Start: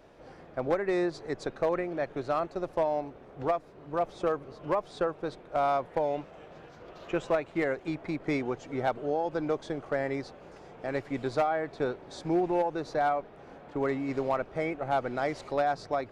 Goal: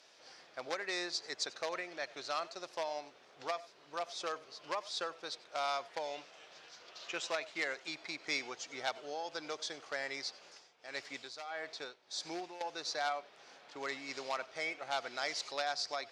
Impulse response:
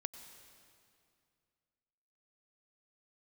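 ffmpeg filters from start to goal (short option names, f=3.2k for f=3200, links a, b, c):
-filter_complex "[0:a]bandpass=f=5.2k:t=q:w=1.9:csg=0[a];[1:a]atrim=start_sample=2205,atrim=end_sample=4410[b];[a][b]afir=irnorm=-1:irlink=0,asettb=1/sr,asplit=3[c][d][e];[c]atrim=end=10.444[f];[d]atrim=start=10.44:end=12.61,asetpts=PTS-STARTPTS,afade=t=in:d=0.004:c=qsin,afade=t=out:st=2.166:d=0.004:c=qsin,tremolo=f=1.6:d=0.77[g];[e]atrim=start=12.606[h];[f][g]acrossfade=d=0.004:c1=hsin:c2=qsin[i];[i][h]acrossfade=d=0.004:c1=qsin:c2=hsin,volume=15.5dB"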